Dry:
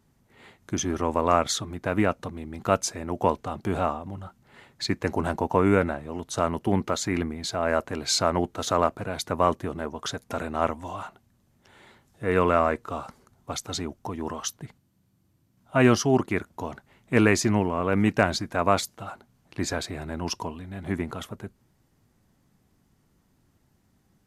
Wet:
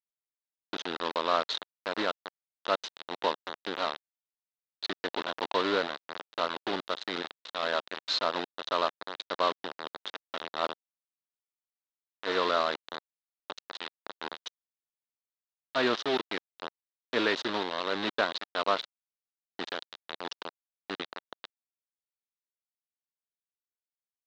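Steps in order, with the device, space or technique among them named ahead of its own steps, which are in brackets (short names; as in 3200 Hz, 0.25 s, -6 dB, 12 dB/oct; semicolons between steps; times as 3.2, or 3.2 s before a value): hand-held game console (bit-crush 4-bit; speaker cabinet 420–4100 Hz, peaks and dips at 750 Hz -4 dB, 2300 Hz -6 dB, 3800 Hz +8 dB); gain -4 dB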